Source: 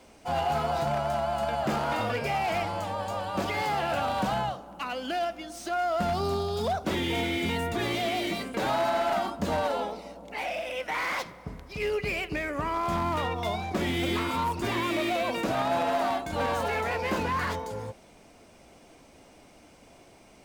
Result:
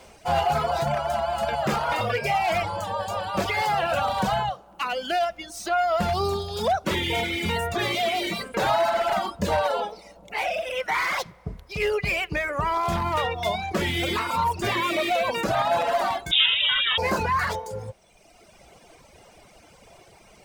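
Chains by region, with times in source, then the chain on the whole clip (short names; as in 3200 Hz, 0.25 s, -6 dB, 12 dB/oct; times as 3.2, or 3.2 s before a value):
16.31–16.98 low shelf 450 Hz +6 dB + inverted band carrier 3700 Hz
whole clip: reverb removal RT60 1.4 s; bell 270 Hz -11.5 dB 0.5 oct; gain +7 dB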